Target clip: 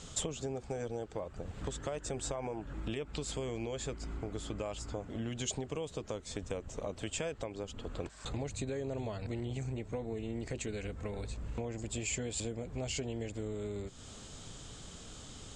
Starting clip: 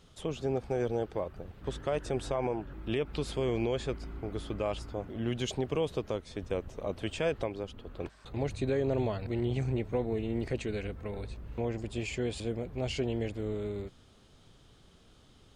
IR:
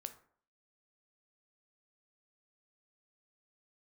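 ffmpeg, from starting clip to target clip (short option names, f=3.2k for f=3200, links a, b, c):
-af "bandreject=f=370:w=12,acompressor=threshold=-47dB:ratio=5,lowpass=f=7.5k:t=q:w=5.9,volume=9.5dB"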